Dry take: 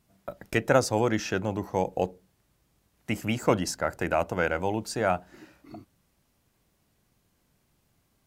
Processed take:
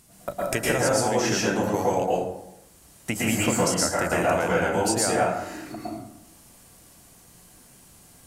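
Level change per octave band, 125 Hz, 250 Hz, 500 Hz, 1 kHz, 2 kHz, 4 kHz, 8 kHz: +2.0, +4.0, +3.5, +4.5, +4.5, +7.5, +12.0 decibels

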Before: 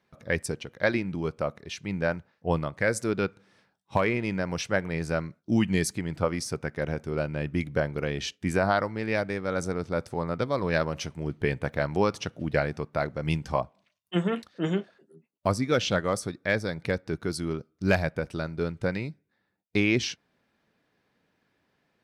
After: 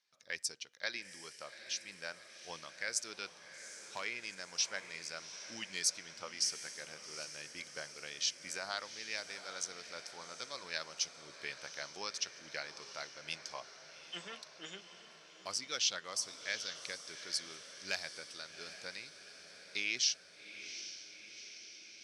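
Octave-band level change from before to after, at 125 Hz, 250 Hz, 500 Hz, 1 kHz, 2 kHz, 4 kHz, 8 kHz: −33.5, −29.0, −22.5, −16.0, −10.0, 0.0, +2.5 decibels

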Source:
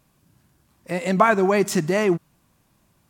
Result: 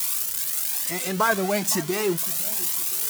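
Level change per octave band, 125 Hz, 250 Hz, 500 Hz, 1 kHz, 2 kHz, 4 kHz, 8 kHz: −6.0, −6.0, −6.0, −5.0, −2.0, +7.5, +12.0 decibels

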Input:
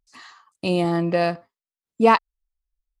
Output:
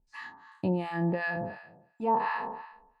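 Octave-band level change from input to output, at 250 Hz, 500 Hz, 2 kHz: −8.5, −12.0, −5.0 decibels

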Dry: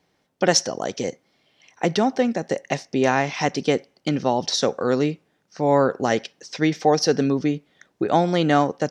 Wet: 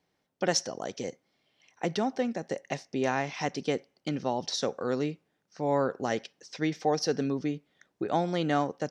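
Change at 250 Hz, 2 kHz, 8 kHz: −9.0, −9.0, −9.0 decibels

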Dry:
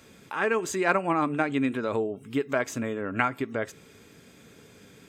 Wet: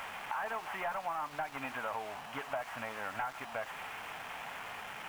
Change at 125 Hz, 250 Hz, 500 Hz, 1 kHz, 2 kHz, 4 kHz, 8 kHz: −18.0, −22.0, −14.0, −6.5, −9.0, −3.5, −13.0 decibels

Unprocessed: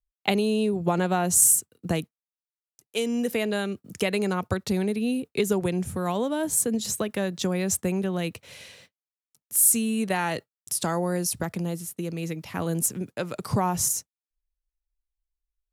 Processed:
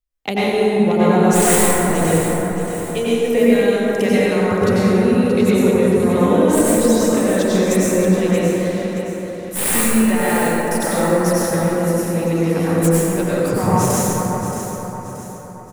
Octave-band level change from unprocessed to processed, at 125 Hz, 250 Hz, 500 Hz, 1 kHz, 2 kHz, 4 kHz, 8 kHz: +11.0, +12.0, +13.5, +10.5, +10.5, +6.0, +2.5 decibels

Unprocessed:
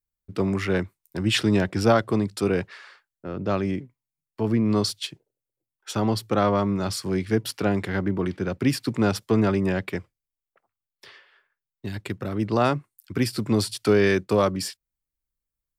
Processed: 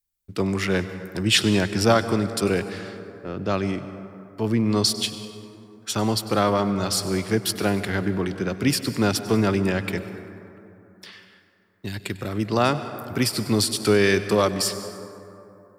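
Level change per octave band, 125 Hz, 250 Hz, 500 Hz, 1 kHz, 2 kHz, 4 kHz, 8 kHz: +0.5, +0.5, +0.5, +1.5, +3.0, +6.0, +8.0 decibels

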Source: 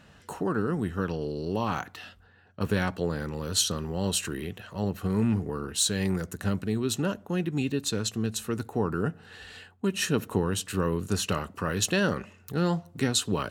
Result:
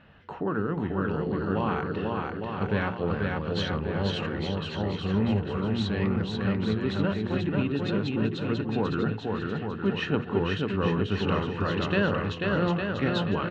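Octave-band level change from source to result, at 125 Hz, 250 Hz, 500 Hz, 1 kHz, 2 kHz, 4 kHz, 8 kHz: +2.0 dB, +2.0 dB, +2.0 dB, +2.5 dB, +2.5 dB, −3.5 dB, below −20 dB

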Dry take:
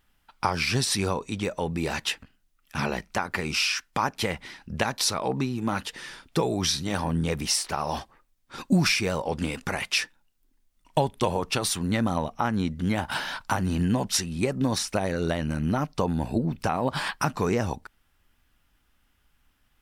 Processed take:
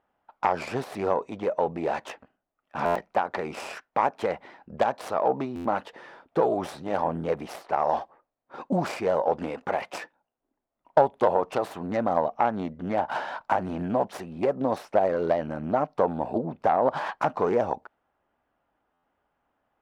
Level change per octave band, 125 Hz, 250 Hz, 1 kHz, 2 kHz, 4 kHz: −9.5, −4.5, +4.5, −6.0, −16.5 decibels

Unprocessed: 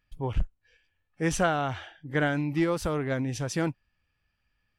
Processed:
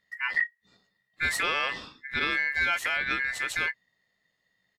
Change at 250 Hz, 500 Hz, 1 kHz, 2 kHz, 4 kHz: −16.0, −11.0, −1.5, +9.0, +8.0 decibels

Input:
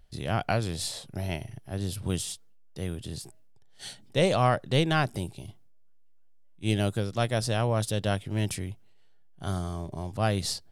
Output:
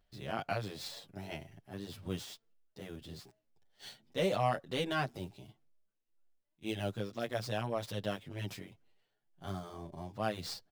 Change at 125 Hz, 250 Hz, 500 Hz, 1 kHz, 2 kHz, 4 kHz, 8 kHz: −13.0, −9.5, −7.5, −7.5, −8.0, −9.0, −15.0 decibels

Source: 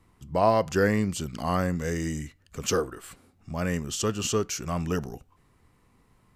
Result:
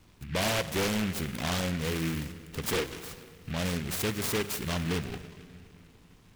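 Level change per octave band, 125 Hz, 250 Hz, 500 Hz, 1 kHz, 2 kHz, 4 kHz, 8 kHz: −2.5, −3.5, −6.5, −8.0, +0.5, +3.0, −3.0 decibels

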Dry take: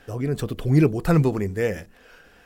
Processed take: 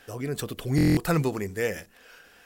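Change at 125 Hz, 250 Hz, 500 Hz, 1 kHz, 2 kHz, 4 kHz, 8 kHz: −6.0, −3.5, −5.0, −2.0, 0.0, +3.0, +4.5 decibels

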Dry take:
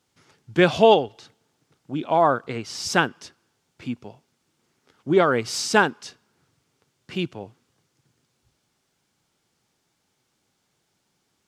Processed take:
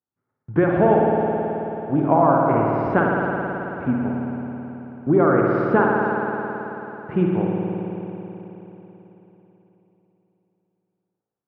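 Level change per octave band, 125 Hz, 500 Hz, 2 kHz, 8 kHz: +8.0 dB, +3.0 dB, −0.5 dB, below −40 dB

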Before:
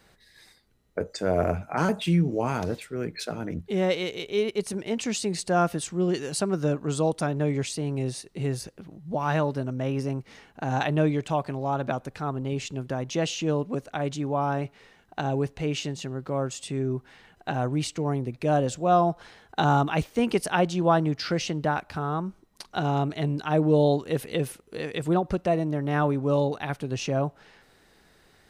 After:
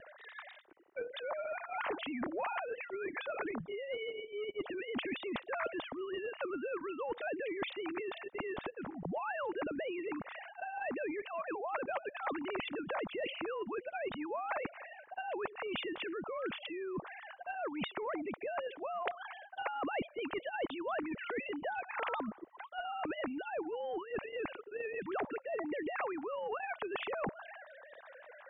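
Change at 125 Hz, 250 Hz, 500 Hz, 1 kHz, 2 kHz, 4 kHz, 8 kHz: −28.5 dB, −14.5 dB, −11.0 dB, −11.0 dB, −5.0 dB, −10.5 dB, below −40 dB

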